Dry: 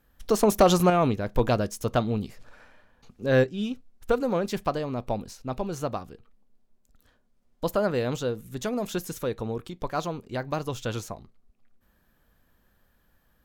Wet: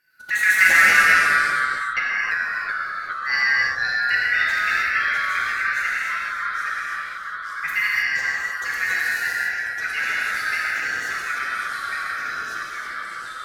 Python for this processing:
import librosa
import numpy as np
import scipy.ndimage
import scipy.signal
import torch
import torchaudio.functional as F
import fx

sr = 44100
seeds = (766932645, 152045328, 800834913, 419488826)

y = fx.band_shuffle(x, sr, order='3142')
y = fx.bandpass_q(y, sr, hz=1200.0, q=5.1, at=(1.0, 1.97))
y = fx.rev_gated(y, sr, seeds[0], gate_ms=340, shape='flat', drr_db=-5.0)
y = fx.echo_pitch(y, sr, ms=104, semitones=-2, count=3, db_per_echo=-3.0)
y = y * 10.0 ** (-3.0 / 20.0)